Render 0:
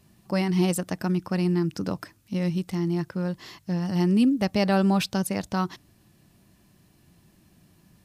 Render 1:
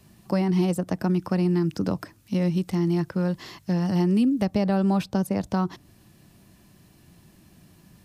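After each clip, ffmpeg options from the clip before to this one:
-filter_complex "[0:a]acrossover=split=230|1100[a][b][c];[a]acompressor=threshold=-29dB:ratio=4[d];[b]acompressor=threshold=-29dB:ratio=4[e];[c]acompressor=threshold=-45dB:ratio=4[f];[d][e][f]amix=inputs=3:normalize=0,volume=4.5dB"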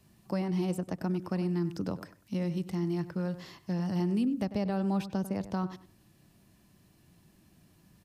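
-filter_complex "[0:a]asplit=2[a][b];[b]adelay=97,lowpass=f=2.3k:p=1,volume=-13dB,asplit=2[c][d];[d]adelay=97,lowpass=f=2.3k:p=1,volume=0.24,asplit=2[e][f];[f]adelay=97,lowpass=f=2.3k:p=1,volume=0.24[g];[a][c][e][g]amix=inputs=4:normalize=0,volume=-8dB"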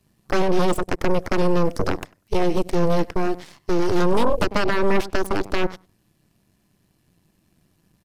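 -af "aresample=32000,aresample=44100,aeval=exprs='0.106*(cos(1*acos(clip(val(0)/0.106,-1,1)))-cos(1*PI/2))+0.0376*(cos(3*acos(clip(val(0)/0.106,-1,1)))-cos(3*PI/2))+0.0531*(cos(6*acos(clip(val(0)/0.106,-1,1)))-cos(6*PI/2))+0.00376*(cos(7*acos(clip(val(0)/0.106,-1,1)))-cos(7*PI/2))':c=same,volume=8dB"

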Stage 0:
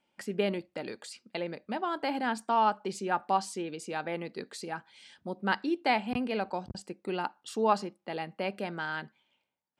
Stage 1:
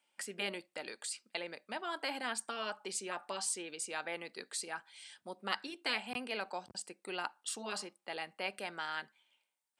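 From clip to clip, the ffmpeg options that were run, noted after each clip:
-af "highpass=f=1.3k:p=1,afftfilt=real='re*lt(hypot(re,im),0.112)':imag='im*lt(hypot(re,im),0.112)':win_size=1024:overlap=0.75,equalizer=f=8.7k:t=o:w=0.42:g=9.5,volume=1dB"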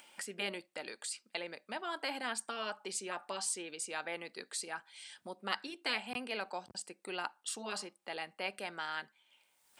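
-af "acompressor=mode=upward:threshold=-45dB:ratio=2.5"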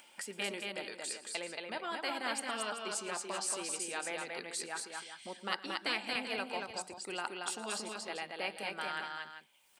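-af "aecho=1:1:114|200|228|387:0.119|0.106|0.668|0.282"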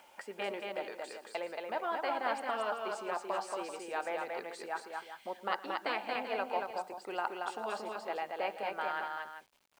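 -af "bandpass=f=730:t=q:w=1.1:csg=0,acrusher=bits=11:mix=0:aa=0.000001,volume=7dB"

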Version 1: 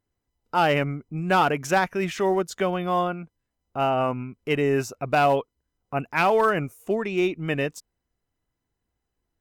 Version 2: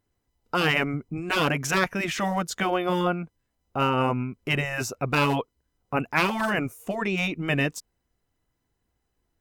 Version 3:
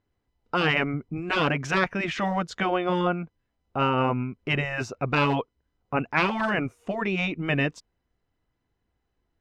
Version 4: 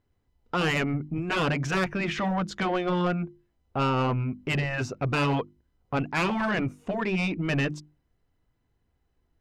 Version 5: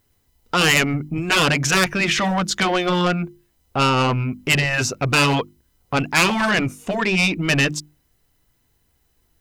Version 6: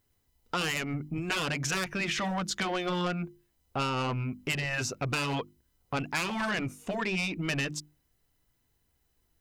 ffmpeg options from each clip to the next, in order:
-af "afftfilt=real='re*lt(hypot(re,im),0.355)':imag='im*lt(hypot(re,im),0.355)':win_size=1024:overlap=0.75,volume=4dB"
-af "lowpass=3.9k"
-af "lowshelf=f=250:g=6.5,bandreject=f=50:t=h:w=6,bandreject=f=100:t=h:w=6,bandreject=f=150:t=h:w=6,bandreject=f=200:t=h:w=6,bandreject=f=250:t=h:w=6,bandreject=f=300:t=h:w=6,bandreject=f=350:t=h:w=6,asoftclip=type=tanh:threshold=-20dB"
-af "crystalizer=i=5:c=0,volume=5.5dB"
-af "acompressor=threshold=-19dB:ratio=6,volume=-8.5dB"

